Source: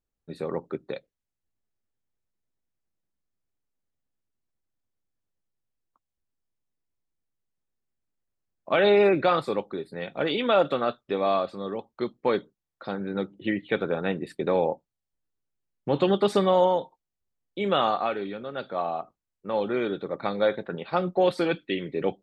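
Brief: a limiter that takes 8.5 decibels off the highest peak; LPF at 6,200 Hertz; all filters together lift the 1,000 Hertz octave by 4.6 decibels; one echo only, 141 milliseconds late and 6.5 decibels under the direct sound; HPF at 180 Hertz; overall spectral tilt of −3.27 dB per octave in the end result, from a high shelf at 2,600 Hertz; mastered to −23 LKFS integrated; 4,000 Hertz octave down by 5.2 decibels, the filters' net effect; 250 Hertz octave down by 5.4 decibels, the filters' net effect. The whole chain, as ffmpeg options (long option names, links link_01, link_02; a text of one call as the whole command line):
ffmpeg -i in.wav -af "highpass=180,lowpass=6200,equalizer=frequency=250:width_type=o:gain=-7.5,equalizer=frequency=1000:width_type=o:gain=7.5,highshelf=frequency=2600:gain=-4,equalizer=frequency=4000:width_type=o:gain=-3.5,alimiter=limit=-16dB:level=0:latency=1,aecho=1:1:141:0.473,volume=5.5dB" out.wav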